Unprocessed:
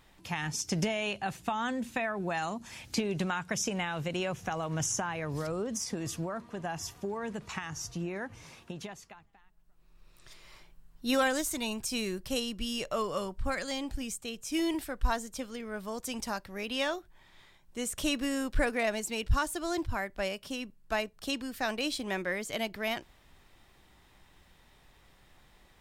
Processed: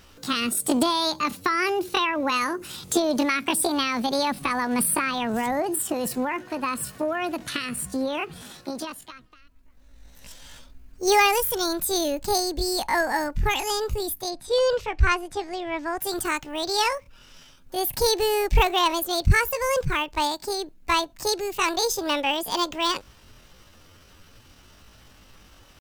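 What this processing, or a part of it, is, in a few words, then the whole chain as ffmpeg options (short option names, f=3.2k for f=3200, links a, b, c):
chipmunk voice: -filter_complex "[0:a]asetrate=68011,aresample=44100,atempo=0.64842,asettb=1/sr,asplit=3[a][b][c];[a]atrim=end=14.304[d];[b]atrim=start=14.3:end=15.99,asetpts=PTS-STARTPTS,afade=t=in:d=0.004:c=qsin,afade=t=out:st=1.686:d=0.004:c=qsin,lowpass=5.4k[e];[c]atrim=start=15.986[f];[d][e]acrossfade=d=0.004:c1=hsin:c2=qsin[g];[g][f]acrossfade=d=0.004:c1=qsin:c2=hsin,volume=9dB"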